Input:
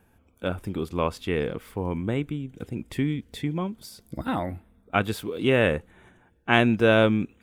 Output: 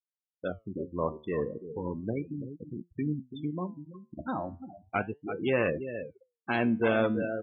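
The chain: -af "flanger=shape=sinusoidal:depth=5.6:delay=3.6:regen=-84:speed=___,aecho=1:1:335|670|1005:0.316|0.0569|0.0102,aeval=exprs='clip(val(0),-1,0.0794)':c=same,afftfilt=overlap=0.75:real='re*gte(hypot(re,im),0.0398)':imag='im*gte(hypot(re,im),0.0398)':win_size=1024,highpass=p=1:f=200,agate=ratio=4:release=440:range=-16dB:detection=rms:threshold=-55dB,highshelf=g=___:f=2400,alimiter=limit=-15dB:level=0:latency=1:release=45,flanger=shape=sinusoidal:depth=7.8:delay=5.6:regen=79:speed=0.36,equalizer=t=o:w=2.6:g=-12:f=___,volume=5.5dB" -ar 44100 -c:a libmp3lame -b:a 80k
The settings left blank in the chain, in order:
1.7, 7, 8200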